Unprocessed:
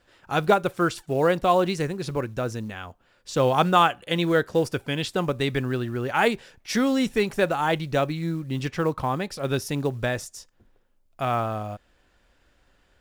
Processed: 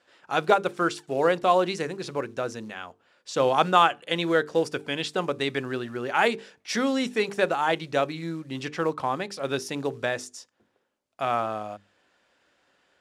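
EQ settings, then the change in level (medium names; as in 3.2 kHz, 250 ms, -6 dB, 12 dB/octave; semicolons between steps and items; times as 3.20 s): Bessel high-pass 270 Hz, order 2; low-pass 8.7 kHz 12 dB/octave; hum notches 50/100/150/200/250/300/350/400/450 Hz; 0.0 dB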